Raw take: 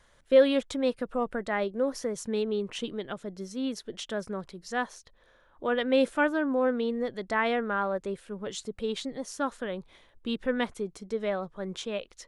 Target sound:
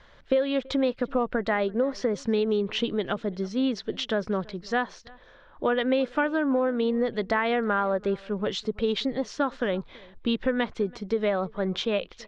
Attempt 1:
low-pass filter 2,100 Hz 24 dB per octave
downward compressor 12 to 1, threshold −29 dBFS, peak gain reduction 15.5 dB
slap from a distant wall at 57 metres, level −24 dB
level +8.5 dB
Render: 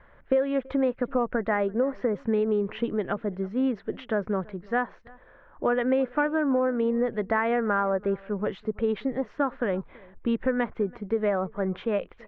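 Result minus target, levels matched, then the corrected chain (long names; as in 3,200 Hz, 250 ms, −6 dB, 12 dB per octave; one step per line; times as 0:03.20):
4,000 Hz band −15.0 dB
low-pass filter 4,700 Hz 24 dB per octave
downward compressor 12 to 1, threshold −29 dBFS, peak gain reduction 15.5 dB
slap from a distant wall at 57 metres, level −24 dB
level +8.5 dB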